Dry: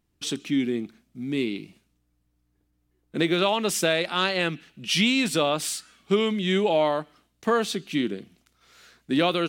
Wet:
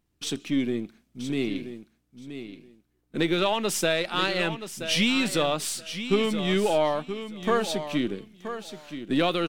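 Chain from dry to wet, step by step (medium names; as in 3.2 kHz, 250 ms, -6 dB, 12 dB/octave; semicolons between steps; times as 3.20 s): partial rectifier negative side -3 dB; feedback delay 976 ms, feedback 18%, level -10.5 dB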